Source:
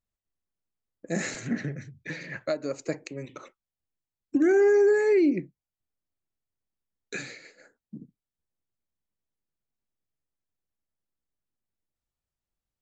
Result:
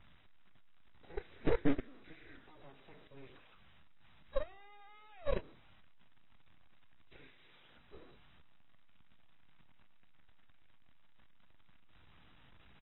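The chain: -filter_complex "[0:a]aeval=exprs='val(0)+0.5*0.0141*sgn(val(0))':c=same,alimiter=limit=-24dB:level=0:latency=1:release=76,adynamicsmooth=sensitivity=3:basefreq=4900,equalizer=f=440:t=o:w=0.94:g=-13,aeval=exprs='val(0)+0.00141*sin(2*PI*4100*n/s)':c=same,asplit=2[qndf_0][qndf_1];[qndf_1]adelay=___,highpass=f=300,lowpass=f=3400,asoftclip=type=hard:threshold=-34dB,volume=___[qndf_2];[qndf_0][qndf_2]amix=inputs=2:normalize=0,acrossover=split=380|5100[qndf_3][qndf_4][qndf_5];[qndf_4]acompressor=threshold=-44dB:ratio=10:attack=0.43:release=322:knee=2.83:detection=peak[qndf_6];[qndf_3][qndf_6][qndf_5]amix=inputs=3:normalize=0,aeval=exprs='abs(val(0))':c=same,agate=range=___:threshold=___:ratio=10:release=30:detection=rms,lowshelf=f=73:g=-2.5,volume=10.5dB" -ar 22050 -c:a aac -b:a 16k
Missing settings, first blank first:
150, -23dB, -21dB, -34dB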